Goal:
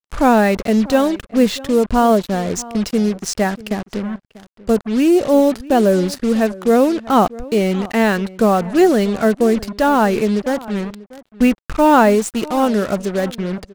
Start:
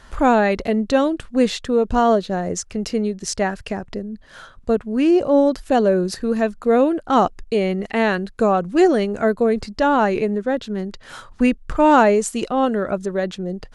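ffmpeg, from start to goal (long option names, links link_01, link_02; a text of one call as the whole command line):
ffmpeg -i in.wav -filter_complex "[0:a]equalizer=frequency=210:width_type=o:width=0.44:gain=4,asettb=1/sr,asplit=3[link_01][link_02][link_03];[link_01]atrim=end=10.394[link_04];[link_02]atrim=start=10.39:end=12.6,asetpts=PTS-STARTPTS,afade=type=in:duration=0.004:curve=qsin,afade=type=out:start_time=2.206:duration=0.004:curve=qsin,aeval=exprs='sgn(val(0))*max(abs(val(0))-0.0158,0)':channel_layout=same[link_05];[link_03]atrim=start=12.596[link_06];[link_04][link_05]acrossfade=duration=0.004:curve1=hsin:curve2=qsin[link_07];[link_07][link_06]acrossfade=duration=0.004:curve1=qsin:curve2=hsin,acrusher=bits=4:mix=0:aa=0.5,asplit=2[link_08][link_09];[link_09]adelay=641.4,volume=-19dB,highshelf=frequency=4000:gain=-14.4[link_10];[link_08][link_10]amix=inputs=2:normalize=0,volume=2dB" out.wav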